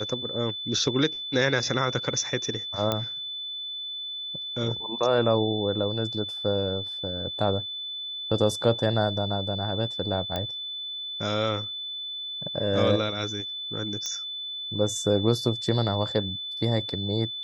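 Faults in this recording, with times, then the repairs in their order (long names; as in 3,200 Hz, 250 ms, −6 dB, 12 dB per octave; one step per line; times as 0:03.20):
whistle 3,500 Hz −32 dBFS
0:02.92: click −11 dBFS
0:10.36: click −15 dBFS
0:14.06: click −17 dBFS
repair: click removal
notch filter 3,500 Hz, Q 30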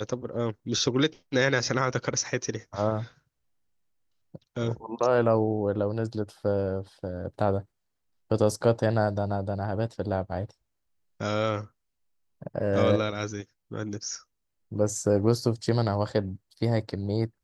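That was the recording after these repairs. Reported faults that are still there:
none of them is left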